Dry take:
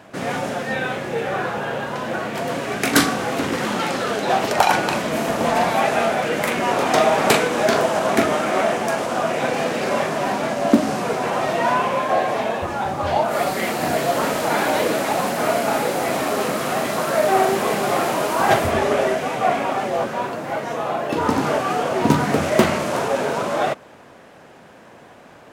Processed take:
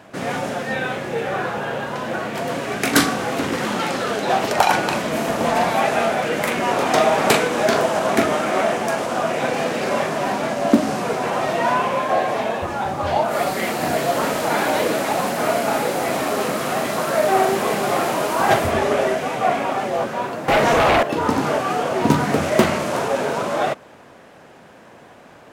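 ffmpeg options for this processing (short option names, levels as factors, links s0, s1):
-filter_complex "[0:a]asettb=1/sr,asplit=3[s0][s1][s2];[s0]atrim=end=20.484[s3];[s1]atrim=start=20.48:end=21.03,asetpts=PTS-STARTPTS,afade=t=in:d=0.004:c=qsin,afade=t=out:st=0.546:d=0.004:c=qsin,aeval=exprs='0.266*sin(PI/2*3.16*val(0)/0.266)':c=same[s4];[s2]atrim=start=21.026[s5];[s3][s4]acrossfade=d=0.004:c1=hsin:c2=qsin[s6];[s6][s5]acrossfade=d=0.004:c1=qsin:c2=hsin"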